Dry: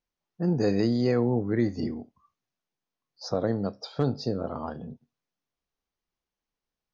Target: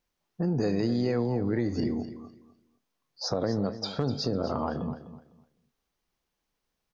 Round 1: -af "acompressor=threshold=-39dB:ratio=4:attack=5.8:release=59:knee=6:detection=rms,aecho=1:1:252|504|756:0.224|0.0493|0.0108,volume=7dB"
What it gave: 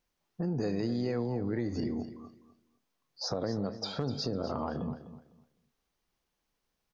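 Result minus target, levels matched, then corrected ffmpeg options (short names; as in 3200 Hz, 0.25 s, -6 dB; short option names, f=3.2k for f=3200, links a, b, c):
compressor: peak gain reduction +5 dB
-af "acompressor=threshold=-32.5dB:ratio=4:attack=5.8:release=59:knee=6:detection=rms,aecho=1:1:252|504|756:0.224|0.0493|0.0108,volume=7dB"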